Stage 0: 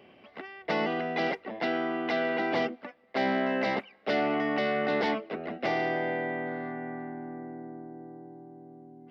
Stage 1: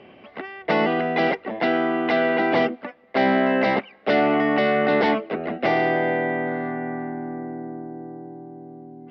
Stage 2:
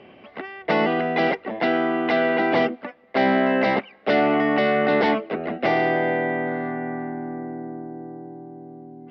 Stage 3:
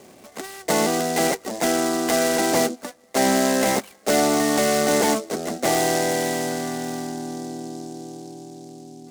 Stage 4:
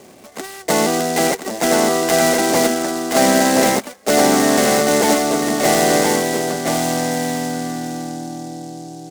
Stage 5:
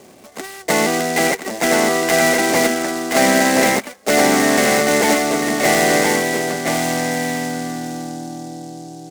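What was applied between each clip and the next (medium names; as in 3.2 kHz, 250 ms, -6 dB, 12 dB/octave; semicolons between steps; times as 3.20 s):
distance through air 150 m; trim +9 dB
no audible change
delay time shaken by noise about 5.9 kHz, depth 0.076 ms
delay 1023 ms -3.5 dB; trim +4 dB
dynamic bell 2.1 kHz, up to +7 dB, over -39 dBFS, Q 2; trim -1 dB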